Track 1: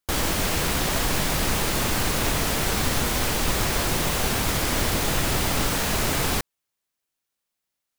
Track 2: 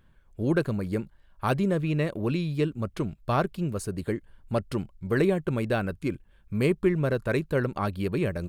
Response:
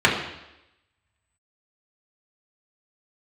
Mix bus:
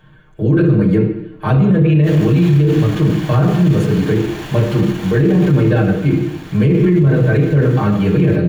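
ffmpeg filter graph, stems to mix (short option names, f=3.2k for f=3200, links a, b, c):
-filter_complex "[0:a]volume=26.5dB,asoftclip=hard,volume=-26.5dB,adelay=1950,volume=-15dB,afade=t=out:st=5.43:d=0.27:silence=0.421697,asplit=2[a][b];[b]volume=-5.5dB[c];[1:a]aecho=1:1:6.5:0.79,acrossover=split=420[d][e];[e]acompressor=threshold=-54dB:ratio=1.5[f];[d][f]amix=inputs=2:normalize=0,volume=0.5dB,asplit=2[g][h];[h]volume=-6dB[i];[2:a]atrim=start_sample=2205[j];[c][i]amix=inputs=2:normalize=0[k];[k][j]afir=irnorm=-1:irlink=0[l];[a][g][l]amix=inputs=3:normalize=0,alimiter=limit=-5.5dB:level=0:latency=1:release=11"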